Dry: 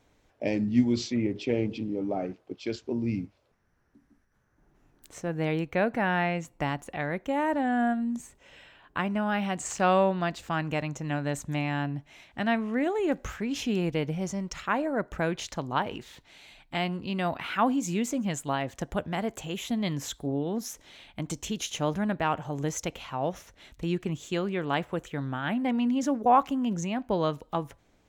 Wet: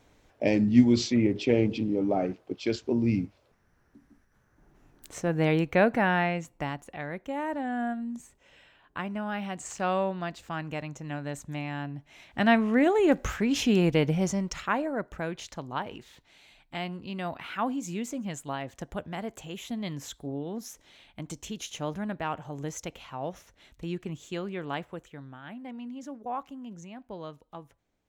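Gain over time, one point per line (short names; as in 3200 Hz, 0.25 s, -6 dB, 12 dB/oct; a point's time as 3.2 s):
5.85 s +4 dB
6.86 s -5 dB
11.96 s -5 dB
12.44 s +5 dB
14.23 s +5 dB
15.2 s -5 dB
24.7 s -5 dB
25.36 s -13.5 dB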